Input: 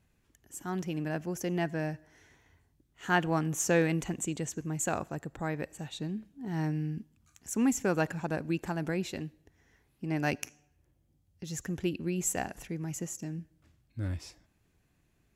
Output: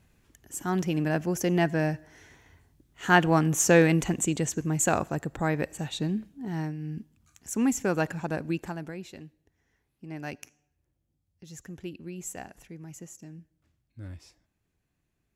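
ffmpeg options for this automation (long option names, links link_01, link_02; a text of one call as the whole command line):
ffmpeg -i in.wav -af "volume=14dB,afade=type=out:start_time=6.18:duration=0.59:silence=0.251189,afade=type=in:start_time=6.77:duration=0.22:silence=0.446684,afade=type=out:start_time=8.5:duration=0.42:silence=0.354813" out.wav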